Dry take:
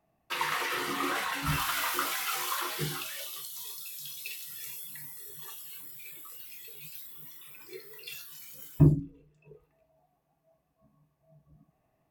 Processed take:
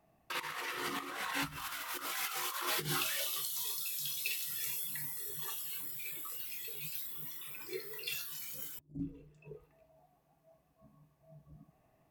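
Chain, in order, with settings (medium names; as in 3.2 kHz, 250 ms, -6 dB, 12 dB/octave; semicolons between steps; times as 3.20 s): compressor with a negative ratio -36 dBFS, ratio -0.5; trim -1.5 dB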